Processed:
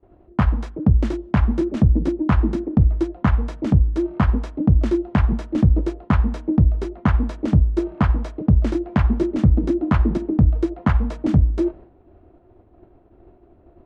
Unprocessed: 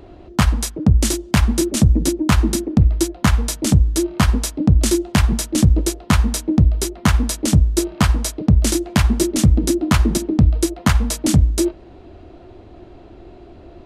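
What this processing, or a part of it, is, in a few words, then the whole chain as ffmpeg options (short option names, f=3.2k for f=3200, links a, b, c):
hearing-loss simulation: -af "lowpass=1.5k,agate=range=-33dB:threshold=-33dB:ratio=3:detection=peak,volume=-2dB"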